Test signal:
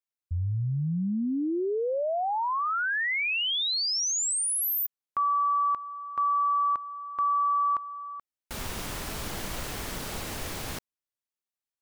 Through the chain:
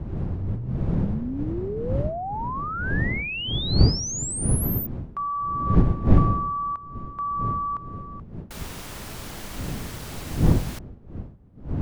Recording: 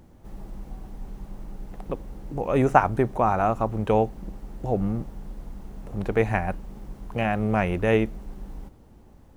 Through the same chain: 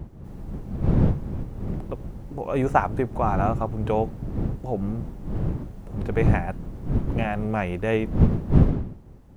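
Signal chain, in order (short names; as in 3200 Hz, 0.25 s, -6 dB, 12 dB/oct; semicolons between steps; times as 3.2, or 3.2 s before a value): wind noise 160 Hz -23 dBFS; gain -2.5 dB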